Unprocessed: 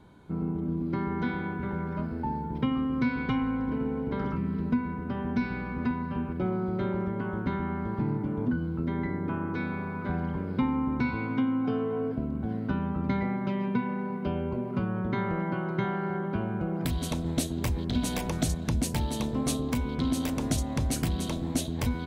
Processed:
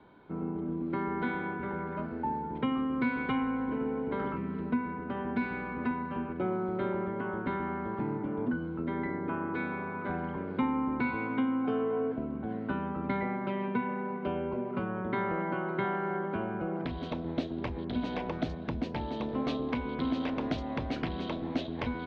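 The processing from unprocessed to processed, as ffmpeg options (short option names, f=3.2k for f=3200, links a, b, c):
-filter_complex "[0:a]asettb=1/sr,asplit=3[a][b][c];[a]atrim=end=16.814[d];[b]atrim=start=16.81:end=19.29,asetpts=PTS-STARTPTS,afade=t=in:d=0.004:c=qsin,afade=t=out:st=2.476:d=0.004:c=qsin,equalizer=f=2.8k:w=0.4:g=-4[e];[c]atrim=start=19.286[f];[d][e]acrossfade=d=0.004:c1=hsin:c2=qsin[g];[g][f]acrossfade=d=0.004:c1=qsin:c2=hsin,lowpass=f=4.8k:w=0.5412,lowpass=f=4.8k:w=1.3066,acrossover=split=250 3700:gain=0.251 1 0.0708[h][i][j];[h][i][j]amix=inputs=3:normalize=0,volume=1dB"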